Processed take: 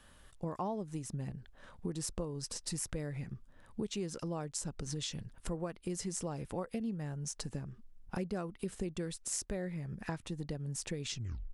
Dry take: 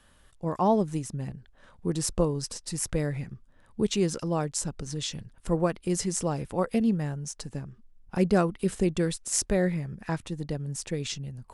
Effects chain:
turntable brake at the end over 0.39 s
downward compressor 5 to 1, threshold −36 dBFS, peak gain reduction 16.5 dB

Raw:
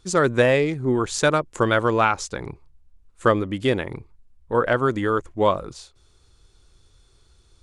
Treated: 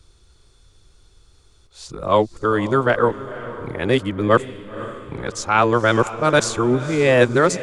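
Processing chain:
played backwards from end to start
feedback delay with all-pass diffusion 508 ms, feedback 45%, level −14 dB
level +3 dB

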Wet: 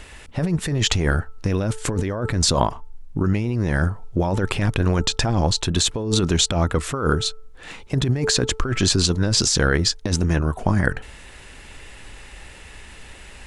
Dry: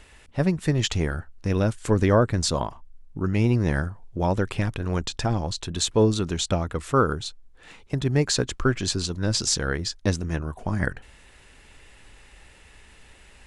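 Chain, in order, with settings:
hum removal 439.1 Hz, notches 3
compressor whose output falls as the input rises −26 dBFS, ratio −1
level +6.5 dB

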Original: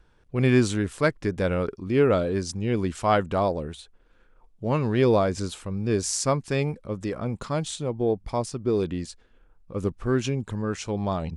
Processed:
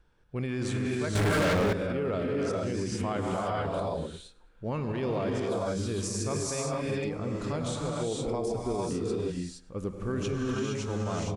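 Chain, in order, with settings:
reverb whose tail is shaped and stops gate 490 ms rising, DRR −3 dB
0:01.15–0:01.73: leveller curve on the samples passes 5
brickwall limiter −16.5 dBFS, peak gain reduction 10 dB
on a send: repeating echo 106 ms, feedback 36%, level −22 dB
on the sum: level −6 dB

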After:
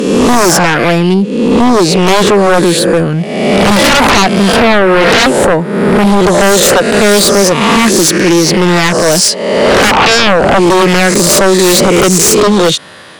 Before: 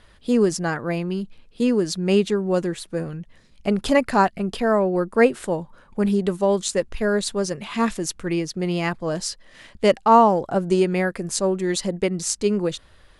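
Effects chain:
peak hold with a rise ahead of every peak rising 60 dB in 1.05 s
high-pass filter 140 Hz 24 dB per octave
in parallel at −1.5 dB: downward compressor, threshold −27 dBFS, peak gain reduction 17.5 dB
0:01.14–0:02.07: on the sum: high-shelf EQ 2,200 Hz −8.5 dB
sine wavefolder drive 17 dB, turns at 1 dBFS
level −4.5 dB

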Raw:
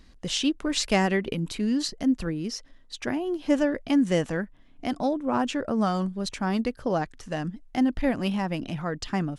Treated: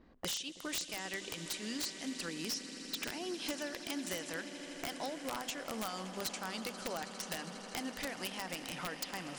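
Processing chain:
one scale factor per block 7 bits
low-pass filter 9,700 Hz 24 dB per octave
mains-hum notches 50/100/150/200/250 Hz
low-pass that shuts in the quiet parts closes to 440 Hz, open at −30.5 dBFS
spectral tilt +4.5 dB per octave
downward compressor 12 to 1, threshold −45 dBFS, peak gain reduction 31.5 dB
echo that builds up and dies away 81 ms, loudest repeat 8, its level −17.5 dB
wrap-around overflow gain 36 dB
level +7.5 dB

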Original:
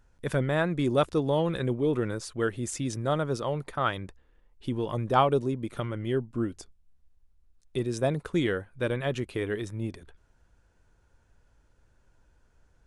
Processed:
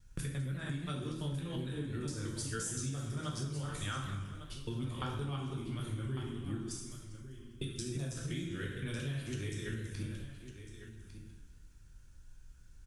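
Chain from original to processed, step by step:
reversed piece by piece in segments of 173 ms
guitar amp tone stack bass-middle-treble 6-0-2
in parallel at −8 dB: bit reduction 5 bits
on the sum: high-shelf EQ 6,200 Hz +7 dB
notch filter 2,000 Hz, Q 21
dense smooth reverb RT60 0.76 s, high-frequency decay 0.95×, DRR −2.5 dB
downward compressor 10 to 1, threshold −50 dBFS, peak gain reduction 18 dB
single-tap delay 1,152 ms −11.5 dB
feedback echo with a swinging delay time 199 ms, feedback 45%, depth 212 cents, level −14.5 dB
level +14.5 dB

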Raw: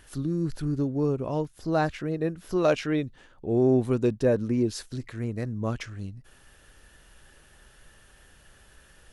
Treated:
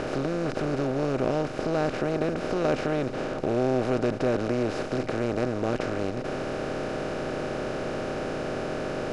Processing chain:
compressor on every frequency bin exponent 0.2
high-frequency loss of the air 74 metres
level −7.5 dB

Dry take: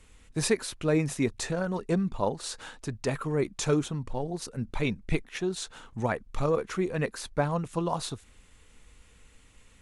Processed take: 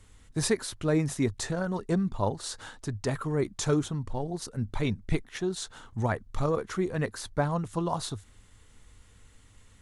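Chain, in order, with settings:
thirty-one-band graphic EQ 100 Hz +10 dB, 500 Hz −3 dB, 2,500 Hz −7 dB

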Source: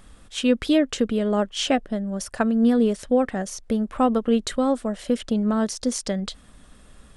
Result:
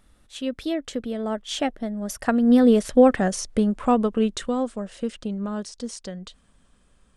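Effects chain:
source passing by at 0:03.08, 18 m/s, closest 10 metres
level +5.5 dB

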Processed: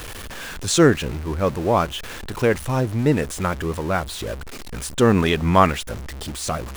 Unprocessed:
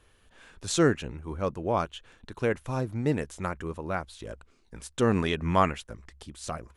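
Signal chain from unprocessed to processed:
converter with a step at zero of −36.5 dBFS
level +7.5 dB

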